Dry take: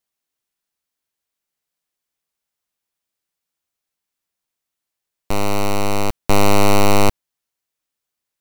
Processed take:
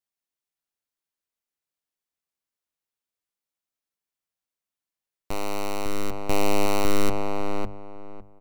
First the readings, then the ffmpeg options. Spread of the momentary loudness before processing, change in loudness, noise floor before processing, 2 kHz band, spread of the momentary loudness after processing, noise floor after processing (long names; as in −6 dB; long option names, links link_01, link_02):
8 LU, −9.5 dB, −83 dBFS, −8.5 dB, 19 LU, below −85 dBFS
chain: -filter_complex "[0:a]bandreject=frequency=50:width_type=h:width=6,bandreject=frequency=100:width_type=h:width=6,bandreject=frequency=150:width_type=h:width=6,bandreject=frequency=200:width_type=h:width=6,asplit=2[link_01][link_02];[link_02]adelay=555,lowpass=frequency=1500:poles=1,volume=-3dB,asplit=2[link_03][link_04];[link_04]adelay=555,lowpass=frequency=1500:poles=1,volume=0.22,asplit=2[link_05][link_06];[link_06]adelay=555,lowpass=frequency=1500:poles=1,volume=0.22[link_07];[link_03][link_05][link_07]amix=inputs=3:normalize=0[link_08];[link_01][link_08]amix=inputs=2:normalize=0,volume=-9dB"